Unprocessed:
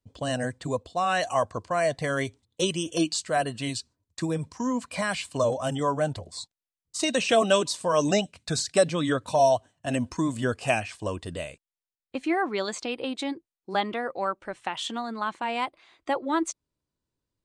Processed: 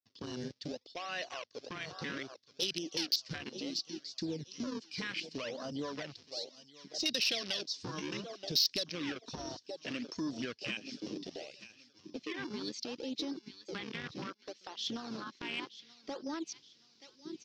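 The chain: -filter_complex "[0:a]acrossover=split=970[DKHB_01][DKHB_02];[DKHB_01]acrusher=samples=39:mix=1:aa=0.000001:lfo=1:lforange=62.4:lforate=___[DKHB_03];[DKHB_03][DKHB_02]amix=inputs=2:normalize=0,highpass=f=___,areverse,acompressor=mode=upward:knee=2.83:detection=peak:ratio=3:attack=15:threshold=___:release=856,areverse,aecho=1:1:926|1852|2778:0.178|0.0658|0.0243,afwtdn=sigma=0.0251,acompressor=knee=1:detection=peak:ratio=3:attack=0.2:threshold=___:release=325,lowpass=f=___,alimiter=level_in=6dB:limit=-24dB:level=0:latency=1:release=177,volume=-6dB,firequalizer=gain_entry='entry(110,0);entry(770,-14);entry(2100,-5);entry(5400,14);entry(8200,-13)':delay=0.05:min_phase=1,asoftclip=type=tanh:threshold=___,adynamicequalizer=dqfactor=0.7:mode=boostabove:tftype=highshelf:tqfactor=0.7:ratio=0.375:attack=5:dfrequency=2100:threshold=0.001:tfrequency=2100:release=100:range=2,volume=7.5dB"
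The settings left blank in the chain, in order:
0.66, 320, -39dB, -36dB, 4900, -32dB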